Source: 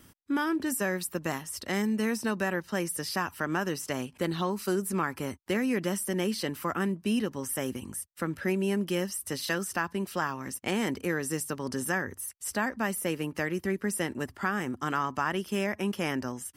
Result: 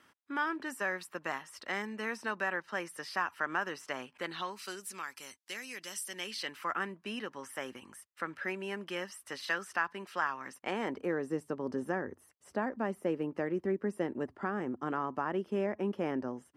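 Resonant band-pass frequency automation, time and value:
resonant band-pass, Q 0.81
0:04.08 1,400 Hz
0:05.10 5,400 Hz
0:05.88 5,400 Hz
0:06.78 1,500 Hz
0:10.39 1,500 Hz
0:11.29 450 Hz

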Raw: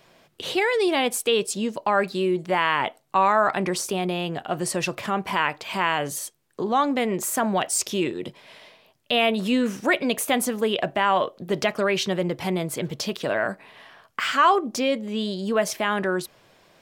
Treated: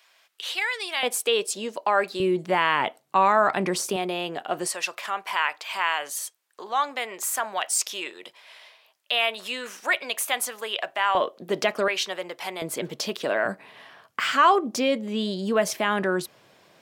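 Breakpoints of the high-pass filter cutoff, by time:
1,300 Hz
from 0:01.03 390 Hz
from 0:02.20 140 Hz
from 0:03.96 310 Hz
from 0:04.67 870 Hz
from 0:11.15 260 Hz
from 0:11.88 720 Hz
from 0:12.62 250 Hz
from 0:13.45 100 Hz

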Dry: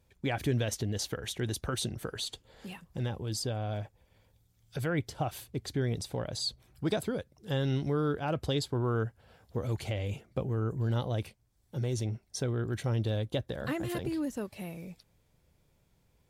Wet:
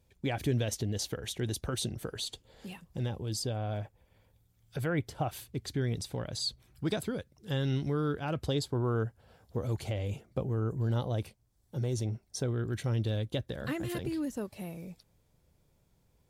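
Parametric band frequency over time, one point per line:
parametric band −4 dB 1.5 octaves
1,400 Hz
from 0:03.55 5,400 Hz
from 0:05.33 660 Hz
from 0:08.48 2,300 Hz
from 0:12.51 780 Hz
from 0:14.32 2,300 Hz

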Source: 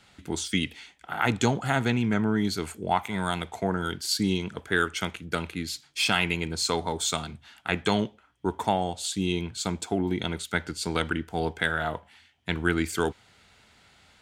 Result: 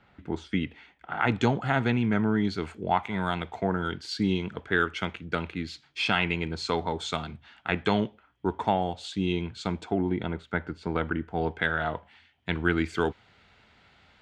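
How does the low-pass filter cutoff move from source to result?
0:00.77 1,800 Hz
0:01.40 3,200 Hz
0:09.71 3,200 Hz
0:10.33 1,600 Hz
0:11.14 1,600 Hz
0:11.74 3,500 Hz

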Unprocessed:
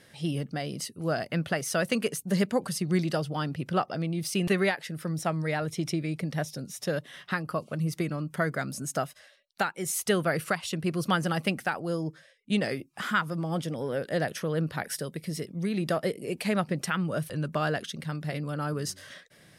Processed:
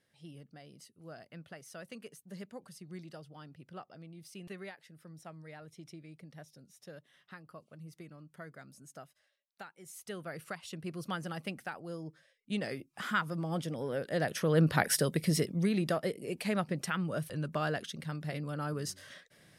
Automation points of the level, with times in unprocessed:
0:09.83 −20 dB
0:10.70 −11.5 dB
0:12.02 −11.5 dB
0:13.22 −4.5 dB
0:14.14 −4.5 dB
0:14.71 +5 dB
0:15.37 +5 dB
0:16.00 −5 dB

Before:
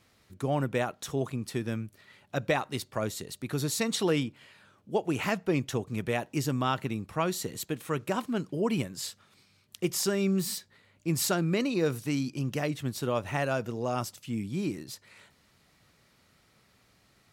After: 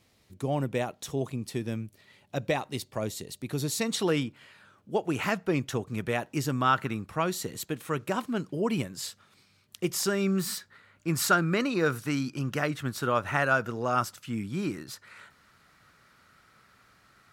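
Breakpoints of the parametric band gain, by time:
parametric band 1,400 Hz 0.79 octaves
0:03.58 −6 dB
0:04.17 +4 dB
0:06.49 +4 dB
0:06.95 +14.5 dB
0:07.12 +2.5 dB
0:09.89 +2.5 dB
0:10.50 +12.5 dB

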